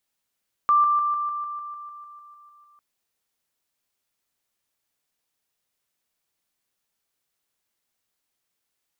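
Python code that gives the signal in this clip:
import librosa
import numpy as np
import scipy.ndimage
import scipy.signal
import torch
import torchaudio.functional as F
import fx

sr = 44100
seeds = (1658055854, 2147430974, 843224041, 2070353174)

y = fx.level_ladder(sr, hz=1180.0, from_db=-14.5, step_db=-3.0, steps=14, dwell_s=0.15, gap_s=0.0)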